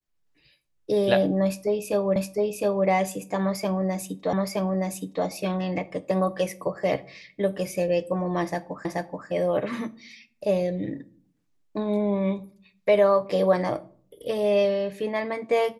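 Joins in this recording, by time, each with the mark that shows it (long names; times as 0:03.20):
0:02.16: the same again, the last 0.71 s
0:04.33: the same again, the last 0.92 s
0:08.85: the same again, the last 0.43 s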